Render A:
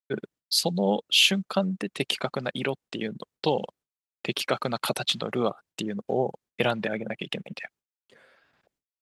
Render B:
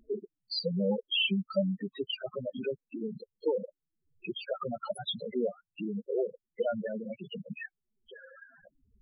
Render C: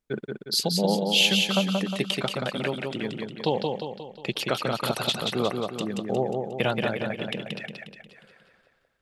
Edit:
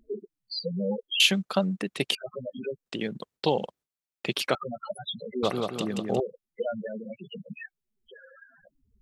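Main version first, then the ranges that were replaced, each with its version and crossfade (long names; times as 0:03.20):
B
0:01.20–0:02.15: punch in from A
0:02.86–0:04.55: punch in from A
0:05.43–0:06.20: punch in from C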